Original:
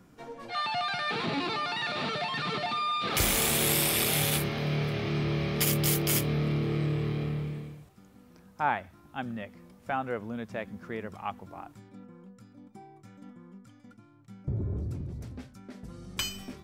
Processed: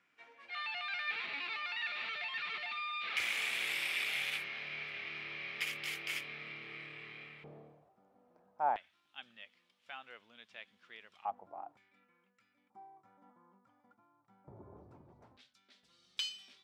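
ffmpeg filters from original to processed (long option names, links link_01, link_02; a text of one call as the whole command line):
ffmpeg -i in.wav -af "asetnsamples=nb_out_samples=441:pad=0,asendcmd='7.44 bandpass f 680;8.76 bandpass f 3200;11.25 bandpass f 730;11.77 bandpass f 2300;12.7 bandpass f 900;15.37 bandpass f 3600',bandpass=frequency=2300:width_type=q:width=2.8:csg=0" out.wav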